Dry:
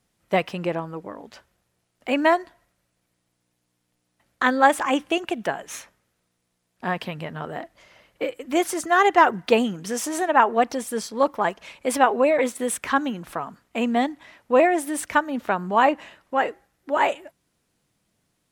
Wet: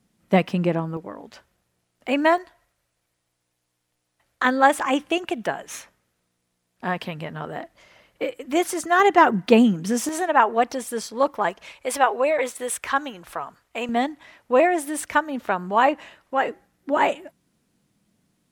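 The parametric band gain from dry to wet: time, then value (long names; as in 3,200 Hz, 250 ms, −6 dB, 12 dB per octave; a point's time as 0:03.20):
parametric band 210 Hz 1.2 octaves
+10.5 dB
from 0:00.97 +1 dB
from 0:02.38 −9 dB
from 0:04.45 +0.5 dB
from 0:09.00 +9 dB
from 0:10.09 −2.5 dB
from 0:11.72 −12.5 dB
from 0:13.89 −2 dB
from 0:16.47 +9 dB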